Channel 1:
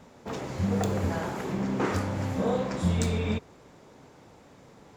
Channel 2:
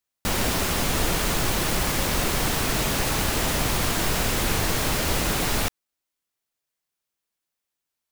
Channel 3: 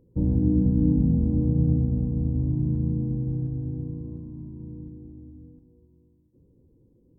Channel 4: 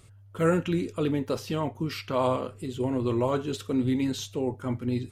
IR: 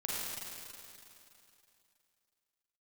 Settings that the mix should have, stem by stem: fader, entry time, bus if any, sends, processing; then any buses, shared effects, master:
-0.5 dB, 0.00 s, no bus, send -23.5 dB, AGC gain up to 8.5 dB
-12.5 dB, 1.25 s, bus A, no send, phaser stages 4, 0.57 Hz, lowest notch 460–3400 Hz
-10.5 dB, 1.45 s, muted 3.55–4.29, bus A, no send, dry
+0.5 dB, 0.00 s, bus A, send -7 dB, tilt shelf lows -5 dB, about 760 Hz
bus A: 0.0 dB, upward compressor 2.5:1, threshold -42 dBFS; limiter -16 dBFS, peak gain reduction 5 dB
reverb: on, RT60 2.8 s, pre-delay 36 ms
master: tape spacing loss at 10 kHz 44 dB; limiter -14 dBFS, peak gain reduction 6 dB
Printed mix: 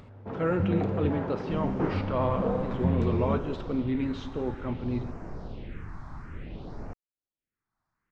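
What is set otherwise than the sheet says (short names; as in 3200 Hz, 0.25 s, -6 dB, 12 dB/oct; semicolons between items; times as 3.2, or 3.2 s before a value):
stem 1: missing AGC gain up to 8.5 dB; stem 3: muted; stem 4: send -7 dB -> -13 dB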